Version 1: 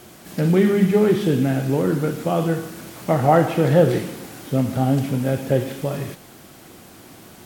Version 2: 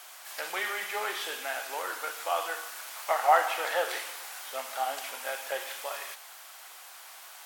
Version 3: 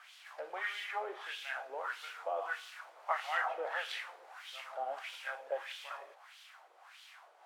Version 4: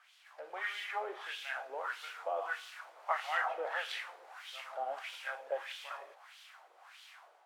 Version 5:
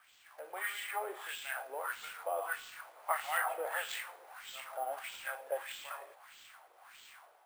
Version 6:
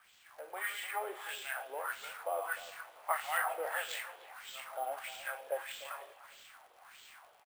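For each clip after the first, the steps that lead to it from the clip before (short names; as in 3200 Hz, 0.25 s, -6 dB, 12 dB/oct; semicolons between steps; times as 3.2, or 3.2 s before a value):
HPF 810 Hz 24 dB/oct
LFO band-pass sine 1.6 Hz 470–3400 Hz
AGC gain up to 8.5 dB; gain -8 dB
sample-and-hold 4×
speakerphone echo 0.3 s, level -16 dB; crackle 85/s -52 dBFS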